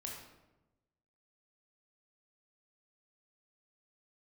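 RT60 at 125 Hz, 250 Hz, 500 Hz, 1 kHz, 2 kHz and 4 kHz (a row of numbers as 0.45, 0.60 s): 1.4, 1.2, 1.1, 0.95, 0.80, 0.65 s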